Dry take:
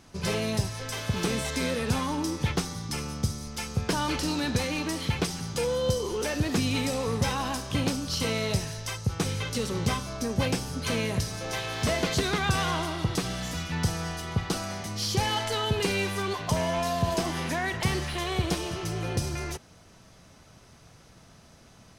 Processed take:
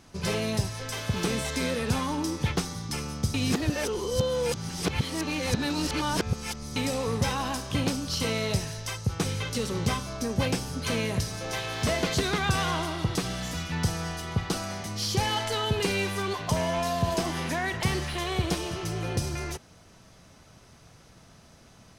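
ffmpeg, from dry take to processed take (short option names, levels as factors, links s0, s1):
-filter_complex "[0:a]asplit=3[s0][s1][s2];[s0]atrim=end=3.342[s3];[s1]atrim=start=3.338:end=6.762,asetpts=PTS-STARTPTS,areverse[s4];[s2]atrim=start=6.758[s5];[s3][s4]acrossfade=d=0.004:c1=hsin:c2=hsin[s6];[s6][s5]acrossfade=d=0.004:c1=hsin:c2=hsin"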